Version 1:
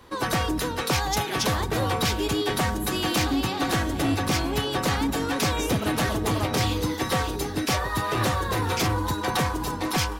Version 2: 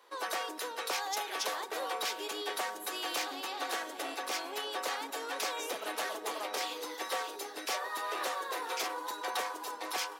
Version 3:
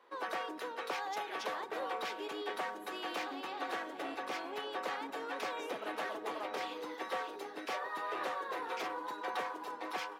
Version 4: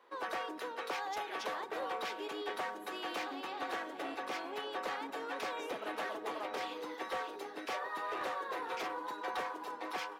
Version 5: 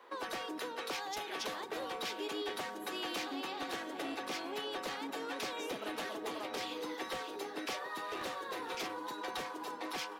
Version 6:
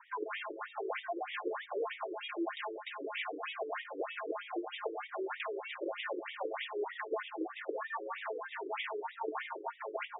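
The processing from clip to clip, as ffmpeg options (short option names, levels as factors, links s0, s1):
-af "highpass=f=440:w=0.5412,highpass=f=440:w=1.3066,volume=0.376"
-af "bass=f=250:g=11,treble=f=4000:g=-15,volume=0.794"
-af "asoftclip=type=hard:threshold=0.0299"
-filter_complex "[0:a]acrossover=split=310|3000[s0][s1][s2];[s1]acompressor=threshold=0.00398:ratio=5[s3];[s0][s3][s2]amix=inputs=3:normalize=0,volume=2.11"
-af "highpass=f=370:t=q:w=0.5412,highpass=f=370:t=q:w=1.307,lowpass=f=3500:t=q:w=0.5176,lowpass=f=3500:t=q:w=0.7071,lowpass=f=3500:t=q:w=1.932,afreqshift=-78,equalizer=f=2700:w=0.44:g=-3.5,afftfilt=real='re*between(b*sr/1024,370*pow(2700/370,0.5+0.5*sin(2*PI*3.2*pts/sr))/1.41,370*pow(2700/370,0.5+0.5*sin(2*PI*3.2*pts/sr))*1.41)':imag='im*between(b*sr/1024,370*pow(2700/370,0.5+0.5*sin(2*PI*3.2*pts/sr))/1.41,370*pow(2700/370,0.5+0.5*sin(2*PI*3.2*pts/sr))*1.41)':win_size=1024:overlap=0.75,volume=2.99"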